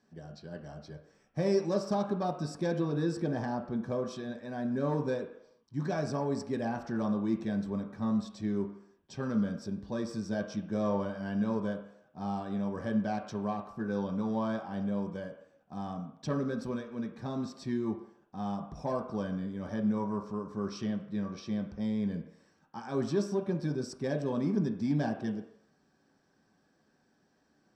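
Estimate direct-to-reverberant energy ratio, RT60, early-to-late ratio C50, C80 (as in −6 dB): 1.5 dB, non-exponential decay, 9.0 dB, 11.0 dB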